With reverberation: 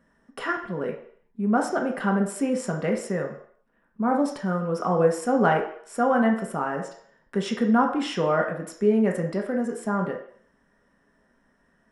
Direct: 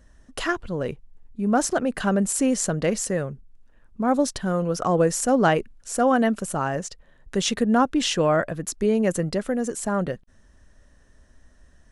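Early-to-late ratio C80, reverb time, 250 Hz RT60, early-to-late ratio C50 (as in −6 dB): 11.0 dB, 0.60 s, 0.45 s, 7.0 dB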